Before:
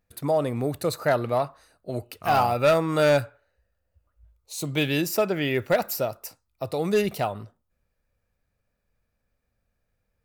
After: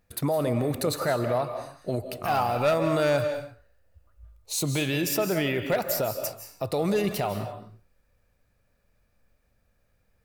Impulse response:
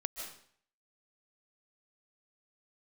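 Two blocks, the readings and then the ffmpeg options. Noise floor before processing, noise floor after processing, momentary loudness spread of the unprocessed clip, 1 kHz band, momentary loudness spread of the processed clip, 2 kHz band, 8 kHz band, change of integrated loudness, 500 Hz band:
−77 dBFS, −69 dBFS, 16 LU, −3.0 dB, 11 LU, −2.5 dB, +3.5 dB, −2.0 dB, −2.0 dB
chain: -filter_complex "[0:a]alimiter=level_in=0.5dB:limit=-24dB:level=0:latency=1:release=133,volume=-0.5dB,asplit=2[link_01][link_02];[1:a]atrim=start_sample=2205,afade=type=out:start_time=0.37:duration=0.01,atrim=end_sample=16758,asetrate=40572,aresample=44100[link_03];[link_02][link_03]afir=irnorm=-1:irlink=0,volume=1.5dB[link_04];[link_01][link_04]amix=inputs=2:normalize=0"

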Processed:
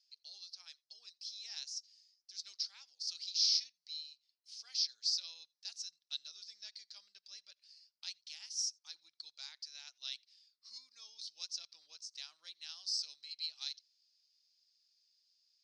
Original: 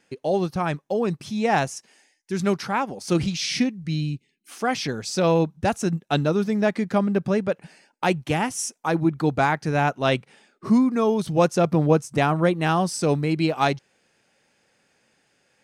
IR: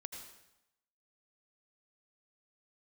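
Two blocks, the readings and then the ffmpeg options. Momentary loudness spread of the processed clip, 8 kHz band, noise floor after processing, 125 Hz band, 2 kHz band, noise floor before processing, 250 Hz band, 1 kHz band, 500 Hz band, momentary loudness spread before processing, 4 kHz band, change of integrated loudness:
19 LU, −9.0 dB, below −85 dBFS, below −40 dB, −30.0 dB, −68 dBFS, below −40 dB, below −40 dB, below −40 dB, 7 LU, −3.5 dB, −16.5 dB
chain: -filter_complex "[0:a]asuperpass=centerf=4800:order=4:qfactor=3.3,asplit=2[link_01][link_02];[1:a]atrim=start_sample=2205,atrim=end_sample=3969[link_03];[link_02][link_03]afir=irnorm=-1:irlink=0,volume=-14.5dB[link_04];[link_01][link_04]amix=inputs=2:normalize=0"

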